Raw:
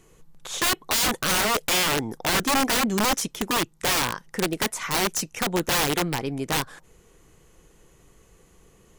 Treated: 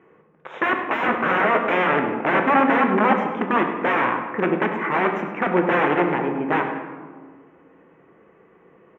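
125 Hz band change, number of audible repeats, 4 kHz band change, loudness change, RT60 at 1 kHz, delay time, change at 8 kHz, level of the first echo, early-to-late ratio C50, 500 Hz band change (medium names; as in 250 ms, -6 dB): +0.5 dB, 1, -13.0 dB, +3.0 dB, 1.6 s, 100 ms, under -35 dB, -12.0 dB, 5.5 dB, +7.5 dB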